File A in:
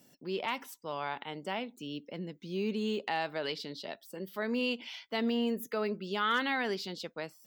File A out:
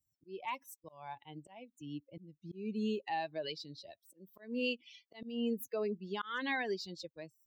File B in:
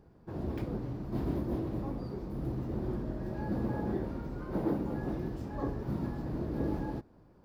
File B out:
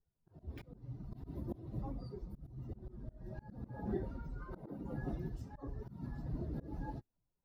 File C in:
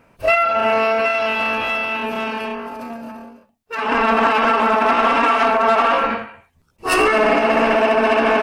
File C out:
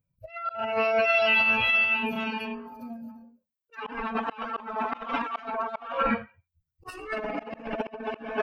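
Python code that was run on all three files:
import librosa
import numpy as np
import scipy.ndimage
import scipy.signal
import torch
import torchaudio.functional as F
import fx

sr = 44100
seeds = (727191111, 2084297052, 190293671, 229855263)

y = fx.bin_expand(x, sr, power=2.0)
y = fx.low_shelf(y, sr, hz=160.0, db=6.5)
y = fx.over_compress(y, sr, threshold_db=-25.0, ratio=-0.5)
y = fx.auto_swell(y, sr, attack_ms=284.0)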